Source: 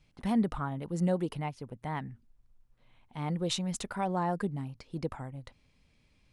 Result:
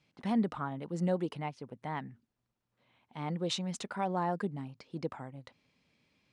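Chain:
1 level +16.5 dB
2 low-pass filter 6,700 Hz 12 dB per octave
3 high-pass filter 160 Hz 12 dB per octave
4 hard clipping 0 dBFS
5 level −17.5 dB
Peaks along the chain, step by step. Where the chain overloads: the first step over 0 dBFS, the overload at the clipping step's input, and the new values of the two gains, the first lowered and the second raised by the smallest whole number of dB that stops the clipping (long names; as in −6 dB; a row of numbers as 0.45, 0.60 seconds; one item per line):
−1.0, −1.0, −2.5, −2.5, −20.0 dBFS
no step passes full scale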